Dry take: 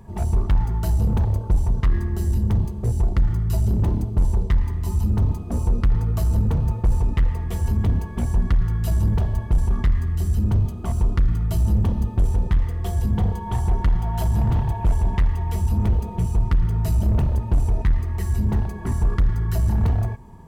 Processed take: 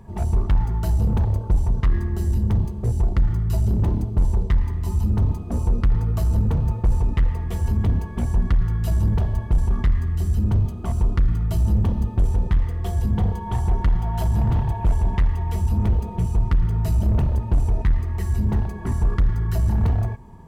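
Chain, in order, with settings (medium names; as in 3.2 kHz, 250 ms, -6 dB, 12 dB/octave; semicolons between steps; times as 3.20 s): treble shelf 5.9 kHz -4 dB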